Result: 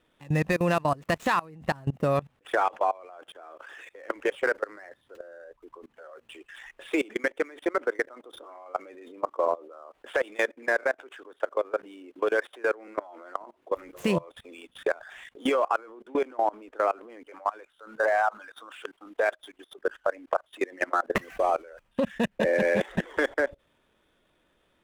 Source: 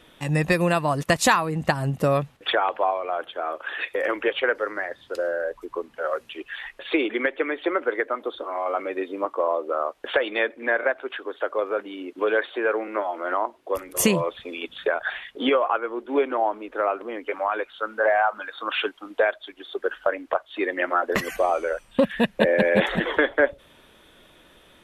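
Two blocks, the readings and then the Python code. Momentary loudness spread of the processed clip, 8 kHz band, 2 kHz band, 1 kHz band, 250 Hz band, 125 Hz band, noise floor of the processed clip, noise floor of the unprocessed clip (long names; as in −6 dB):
21 LU, −14.5 dB, −5.5 dB, −4.0 dB, −5.0 dB, −4.5 dB, −70 dBFS, −55 dBFS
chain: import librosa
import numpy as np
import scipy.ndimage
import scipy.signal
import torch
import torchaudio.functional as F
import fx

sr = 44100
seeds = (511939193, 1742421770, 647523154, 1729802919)

y = scipy.ndimage.median_filter(x, 9, mode='constant')
y = fx.level_steps(y, sr, step_db=23)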